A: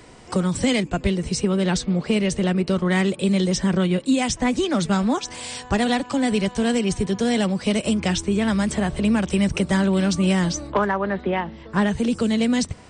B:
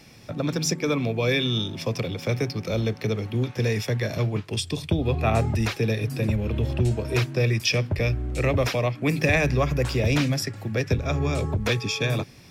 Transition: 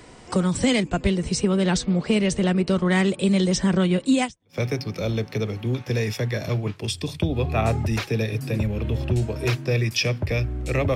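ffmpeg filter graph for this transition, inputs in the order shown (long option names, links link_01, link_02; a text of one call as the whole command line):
ffmpeg -i cue0.wav -i cue1.wav -filter_complex "[0:a]apad=whole_dur=10.95,atrim=end=10.95,atrim=end=4.58,asetpts=PTS-STARTPTS[link_01];[1:a]atrim=start=1.93:end=8.64,asetpts=PTS-STARTPTS[link_02];[link_01][link_02]acrossfade=duration=0.34:curve1=exp:curve2=exp" out.wav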